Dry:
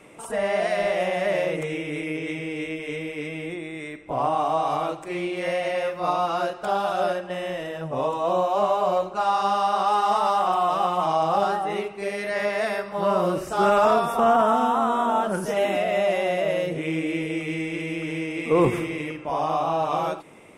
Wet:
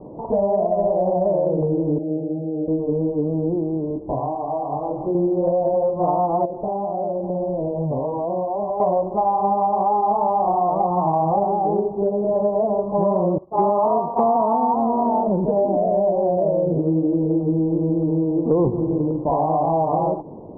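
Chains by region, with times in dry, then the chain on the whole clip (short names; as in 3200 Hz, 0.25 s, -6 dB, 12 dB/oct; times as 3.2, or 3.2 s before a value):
1.98–2.68 rippled Chebyshev low-pass 850 Hz, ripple 6 dB + low shelf 380 Hz -11.5 dB + doubler 13 ms -3.5 dB
3.88–5.15 compressor 16:1, threshold -31 dBFS + doubler 22 ms -4 dB
6.45–8.8 running mean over 21 samples + compressor 8:1, threshold -31 dBFS
10.9–11.31 HPF 48 Hz + comb 0.9 ms, depth 33%
13.38–14.74 HPF 170 Hz 6 dB/oct + expander -22 dBFS + bell 1100 Hz +10 dB 0.54 oct
whole clip: steep low-pass 990 Hz 72 dB/oct; low shelf 410 Hz +7 dB; compressor 5:1, threshold -25 dBFS; gain +8.5 dB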